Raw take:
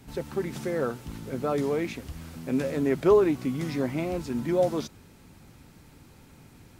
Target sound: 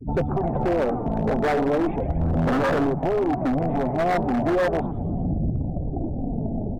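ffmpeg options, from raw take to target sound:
-filter_complex "[0:a]adynamicequalizer=threshold=0.00501:dfrequency=150:dqfactor=2.1:tfrequency=150:tqfactor=2.1:attack=5:release=100:ratio=0.375:range=1.5:mode=boostabove:tftype=bell,afftfilt=real='re*gte(hypot(re,im),0.00794)':imag='im*gte(hypot(re,im),0.00794)':win_size=1024:overlap=0.75,dynaudnorm=f=450:g=3:m=5.96,asplit=2[s0][s1];[s1]alimiter=limit=0.376:level=0:latency=1:release=473,volume=0.794[s2];[s0][s2]amix=inputs=2:normalize=0,acompressor=threshold=0.0562:ratio=8,aresample=8000,asoftclip=type=tanh:threshold=0.0335,aresample=44100,asplit=8[s3][s4][s5][s6][s7][s8][s9][s10];[s4]adelay=118,afreqshift=-140,volume=0.422[s11];[s5]adelay=236,afreqshift=-280,volume=0.24[s12];[s6]adelay=354,afreqshift=-420,volume=0.136[s13];[s7]adelay=472,afreqshift=-560,volume=0.0785[s14];[s8]adelay=590,afreqshift=-700,volume=0.0447[s15];[s9]adelay=708,afreqshift=-840,volume=0.0254[s16];[s10]adelay=826,afreqshift=-980,volume=0.0145[s17];[s3][s11][s12][s13][s14][s15][s16][s17]amix=inputs=8:normalize=0,aphaser=in_gain=1:out_gain=1:delay=4.7:decay=0.39:speed=0.38:type=sinusoidal,lowpass=f=730:t=q:w=5,aeval=exprs='0.0668*(abs(mod(val(0)/0.0668+3,4)-2)-1)':c=same,volume=2.37"

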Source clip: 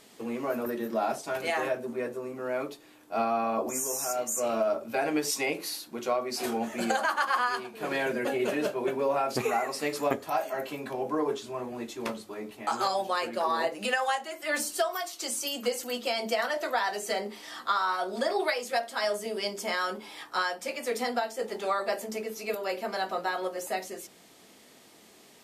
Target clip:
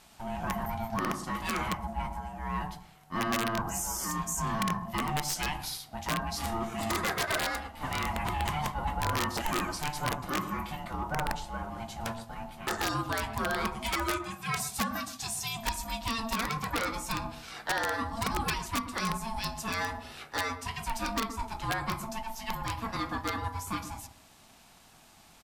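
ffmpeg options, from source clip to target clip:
-filter_complex "[0:a]asplit=2[s0][s1];[s1]volume=26.6,asoftclip=hard,volume=0.0376,volume=0.596[s2];[s0][s2]amix=inputs=2:normalize=0,aeval=exprs='val(0)*sin(2*PI*450*n/s)':c=same,asplit=2[s3][s4];[s4]adelay=122,lowpass=f=820:p=1,volume=0.376,asplit=2[s5][s6];[s6]adelay=122,lowpass=f=820:p=1,volume=0.26,asplit=2[s7][s8];[s8]adelay=122,lowpass=f=820:p=1,volume=0.26[s9];[s3][s5][s7][s9]amix=inputs=4:normalize=0,aeval=exprs='(mod(7.94*val(0)+1,2)-1)/7.94':c=same,volume=0.708"

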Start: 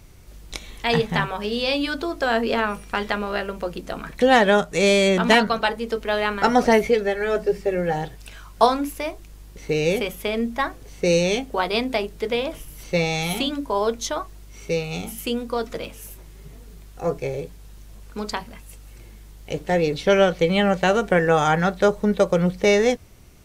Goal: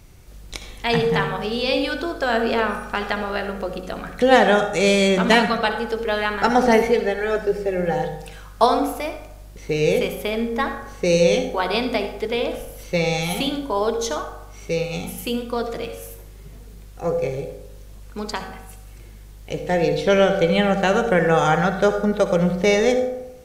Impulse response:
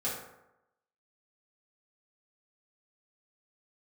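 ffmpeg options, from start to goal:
-filter_complex "[0:a]asplit=2[s0][s1];[1:a]atrim=start_sample=2205,adelay=60[s2];[s1][s2]afir=irnorm=-1:irlink=0,volume=0.237[s3];[s0][s3]amix=inputs=2:normalize=0"

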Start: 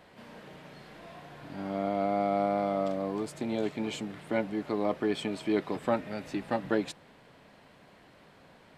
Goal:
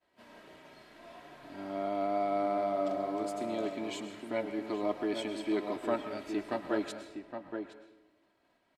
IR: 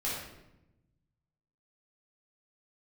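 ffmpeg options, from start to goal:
-filter_complex "[0:a]agate=range=0.0224:threshold=0.00447:ratio=3:detection=peak,bass=f=250:g=-5,treble=f=4000:g=1,aecho=1:1:3.1:0.49,asplit=2[s0][s1];[s1]adelay=816.3,volume=0.501,highshelf=f=4000:g=-18.4[s2];[s0][s2]amix=inputs=2:normalize=0,asplit=2[s3][s4];[1:a]atrim=start_sample=2205,lowshelf=f=380:g=-11,adelay=104[s5];[s4][s5]afir=irnorm=-1:irlink=0,volume=0.2[s6];[s3][s6]amix=inputs=2:normalize=0,volume=0.596"

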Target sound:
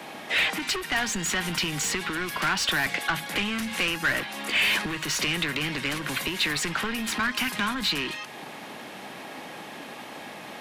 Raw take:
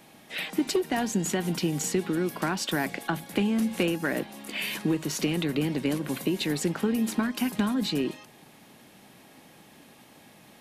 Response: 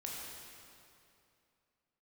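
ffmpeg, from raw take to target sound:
-filter_complex "[0:a]asplit=2[s0][s1];[s1]highpass=f=720:p=1,volume=11.2,asoftclip=type=tanh:threshold=0.224[s2];[s0][s2]amix=inputs=2:normalize=0,lowpass=f=2000:p=1,volume=0.501,acrossover=split=130|1200|6800[s3][s4][s5][s6];[s4]acompressor=threshold=0.0126:ratio=12[s7];[s3][s7][s5][s6]amix=inputs=4:normalize=0,volume=1.5"

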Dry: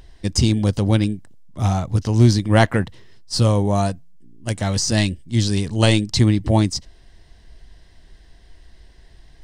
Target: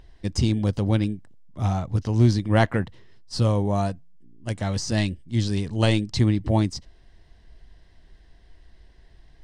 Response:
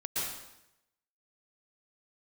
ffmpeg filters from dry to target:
-af "highshelf=f=5500:g=-10,volume=0.596"

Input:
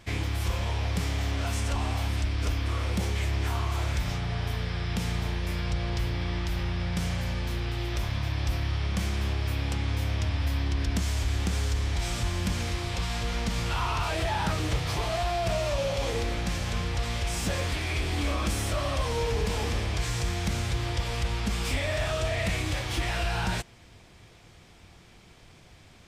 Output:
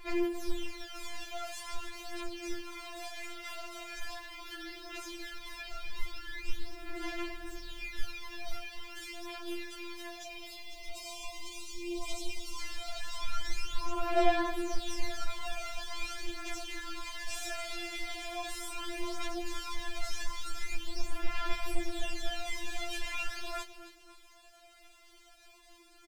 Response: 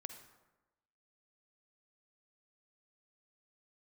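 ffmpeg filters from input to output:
-filter_complex "[0:a]equalizer=f=140:w=1.7:g=4,asoftclip=type=tanh:threshold=0.0668,aphaser=in_gain=1:out_gain=1:delay=4.3:decay=0.78:speed=0.14:type=sinusoidal,aeval=exprs='val(0)*sin(2*PI*36*n/s)':c=same,flanger=delay=16.5:depth=5.4:speed=0.51,acrusher=bits=8:mix=0:aa=0.5,asettb=1/sr,asplit=3[s0][s1][s2];[s0]atrim=end=10.224[s3];[s1]atrim=start=10.22:end=12.6,asetpts=PTS-STARTPTS,afade=t=in:d=0.004:c=qsin,afade=t=out:st=2.376:d=0.004:c=qsin,asuperstop=centerf=1600:order=8:qfactor=1.9[s4];[s2]atrim=start=12.596[s5];[s3][s4]acrossfade=d=0.004:c1=hsin:c2=qsin[s6];[s6][s5]acrossfade=d=0.004:c1=qsin:c2=hsin,aecho=1:1:269|538|807:0.168|0.0655|0.0255,afftfilt=real='re*4*eq(mod(b,16),0)':imag='im*4*eq(mod(b,16),0)':win_size=2048:overlap=0.75"

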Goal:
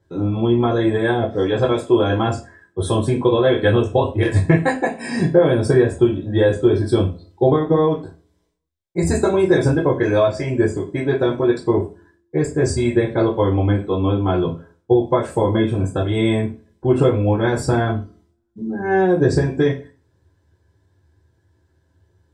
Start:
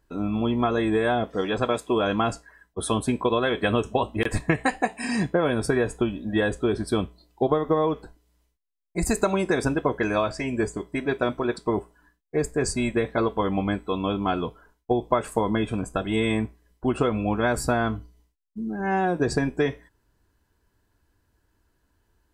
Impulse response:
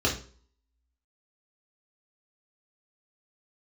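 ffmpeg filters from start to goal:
-filter_complex "[1:a]atrim=start_sample=2205,asetrate=57330,aresample=44100[s0];[0:a][s0]afir=irnorm=-1:irlink=0,asettb=1/sr,asplit=3[s1][s2][s3];[s1]atrim=end=13.534[s4];[s2]atrim=start=13.53:end=14.37,asetpts=PTS-STARTPTS,afade=t=in:d=0.004:c=qsin,afade=t=out:st=0.836:d=0.004:c=qsin,acrossover=split=3700[s5][s6];[s6]acompressor=threshold=0.00316:ratio=4:attack=1:release=60[s7];[s5][s7]amix=inputs=2:normalize=0[s8];[s3]atrim=start=14.366[s9];[s4][s8]acrossfade=d=0.004:c1=hsin:c2=qsin[s10];[s10][s9]acrossfade=d=0.004:c1=qsin:c2=hsin,volume=0.447"

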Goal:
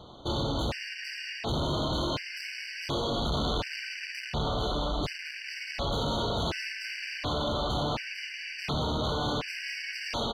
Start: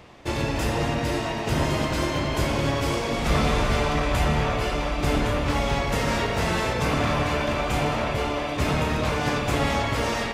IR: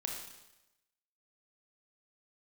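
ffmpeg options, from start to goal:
-af "asoftclip=type=hard:threshold=0.0447,firequalizer=gain_entry='entry(880,0);entry(1600,-3);entry(4100,8);entry(7600,-10)':delay=0.05:min_phase=1,afftfilt=real='re*gt(sin(2*PI*0.69*pts/sr)*(1-2*mod(floor(b*sr/1024/1500),2)),0)':imag='im*gt(sin(2*PI*0.69*pts/sr)*(1-2*mod(floor(b*sr/1024/1500),2)),0)':win_size=1024:overlap=0.75"

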